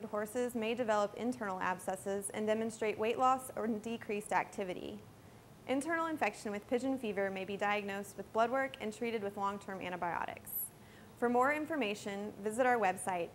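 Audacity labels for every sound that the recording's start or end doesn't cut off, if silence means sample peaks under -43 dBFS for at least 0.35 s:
5.670000	10.680000	sound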